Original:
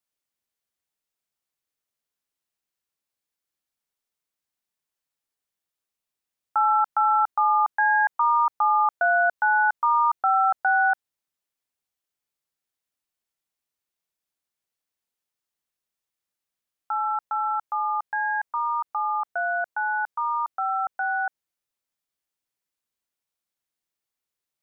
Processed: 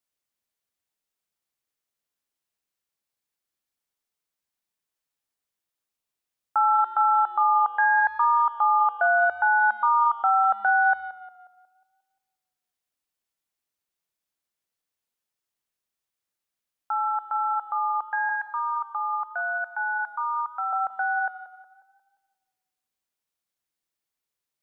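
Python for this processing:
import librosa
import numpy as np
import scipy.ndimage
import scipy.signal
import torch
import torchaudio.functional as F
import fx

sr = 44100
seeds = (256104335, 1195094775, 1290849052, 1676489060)

y = fx.highpass(x, sr, hz=910.0, slope=12, at=(18.29, 20.73))
y = fx.echo_tape(y, sr, ms=178, feedback_pct=50, wet_db=-14.0, lp_hz=1700.0, drive_db=13.0, wow_cents=36)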